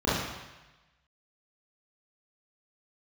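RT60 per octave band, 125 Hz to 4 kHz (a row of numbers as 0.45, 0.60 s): 1.2, 0.95, 1.0, 1.1, 1.2, 1.1 s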